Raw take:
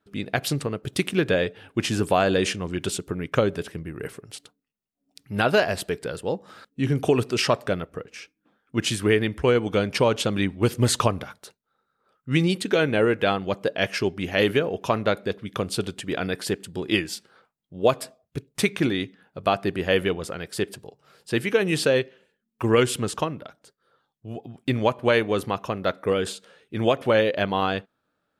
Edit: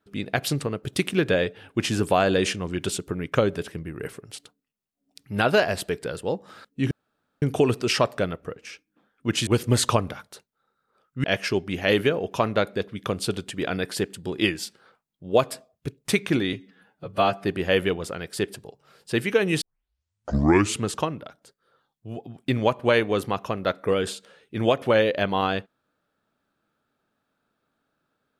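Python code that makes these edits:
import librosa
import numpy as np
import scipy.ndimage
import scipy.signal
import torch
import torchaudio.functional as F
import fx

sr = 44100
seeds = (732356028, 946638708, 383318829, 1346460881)

y = fx.edit(x, sr, fx.insert_room_tone(at_s=6.91, length_s=0.51),
    fx.cut(start_s=8.96, length_s=1.62),
    fx.cut(start_s=12.35, length_s=1.39),
    fx.stretch_span(start_s=19.03, length_s=0.61, factor=1.5),
    fx.tape_start(start_s=21.81, length_s=1.24), tone=tone)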